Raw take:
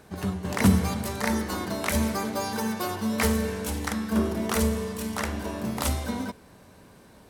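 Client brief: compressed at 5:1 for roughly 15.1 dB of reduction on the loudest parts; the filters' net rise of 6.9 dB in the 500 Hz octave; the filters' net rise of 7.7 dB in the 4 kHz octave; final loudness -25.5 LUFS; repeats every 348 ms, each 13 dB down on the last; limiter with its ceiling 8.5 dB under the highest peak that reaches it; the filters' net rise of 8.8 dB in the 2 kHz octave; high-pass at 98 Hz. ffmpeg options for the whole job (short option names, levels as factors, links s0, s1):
-af "highpass=98,equalizer=f=500:t=o:g=8,equalizer=f=2000:t=o:g=8.5,equalizer=f=4000:t=o:g=7,acompressor=threshold=0.0282:ratio=5,alimiter=limit=0.0631:level=0:latency=1,aecho=1:1:348|696|1044:0.224|0.0493|0.0108,volume=2.82"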